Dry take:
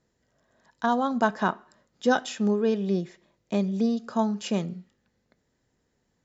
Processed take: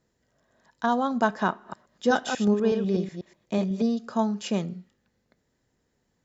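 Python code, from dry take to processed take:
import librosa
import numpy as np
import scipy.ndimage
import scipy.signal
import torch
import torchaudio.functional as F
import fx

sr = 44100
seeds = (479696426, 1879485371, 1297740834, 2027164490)

y = fx.reverse_delay(x, sr, ms=123, wet_db=-6.5, at=(1.49, 3.82))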